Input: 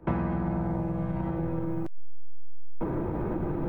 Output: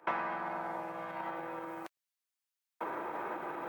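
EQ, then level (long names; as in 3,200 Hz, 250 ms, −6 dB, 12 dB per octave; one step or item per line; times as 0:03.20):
high-pass filter 1,000 Hz 12 dB per octave
+5.5 dB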